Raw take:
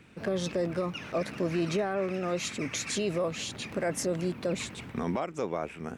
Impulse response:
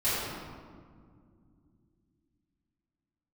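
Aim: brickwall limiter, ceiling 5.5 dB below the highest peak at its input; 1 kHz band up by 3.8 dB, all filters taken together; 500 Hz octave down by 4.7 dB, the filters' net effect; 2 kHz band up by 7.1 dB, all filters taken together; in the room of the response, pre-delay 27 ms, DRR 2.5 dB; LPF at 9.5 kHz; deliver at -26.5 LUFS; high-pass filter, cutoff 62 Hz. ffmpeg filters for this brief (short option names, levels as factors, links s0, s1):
-filter_complex "[0:a]highpass=62,lowpass=9500,equalizer=f=500:t=o:g=-8,equalizer=f=1000:t=o:g=5.5,equalizer=f=2000:t=o:g=8,alimiter=limit=0.0841:level=0:latency=1,asplit=2[s0][s1];[1:a]atrim=start_sample=2205,adelay=27[s2];[s1][s2]afir=irnorm=-1:irlink=0,volume=0.2[s3];[s0][s3]amix=inputs=2:normalize=0,volume=1.58"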